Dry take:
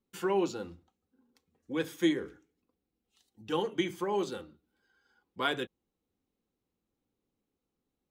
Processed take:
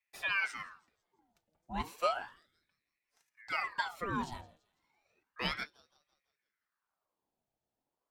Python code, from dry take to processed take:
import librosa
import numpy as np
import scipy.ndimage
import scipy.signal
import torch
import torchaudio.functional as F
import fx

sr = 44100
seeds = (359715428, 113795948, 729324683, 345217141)

y = fx.echo_wet_highpass(x, sr, ms=167, feedback_pct=44, hz=1400.0, wet_db=-22)
y = fx.ring_lfo(y, sr, carrier_hz=1300.0, swing_pct=70, hz=0.33)
y = y * librosa.db_to_amplitude(-2.0)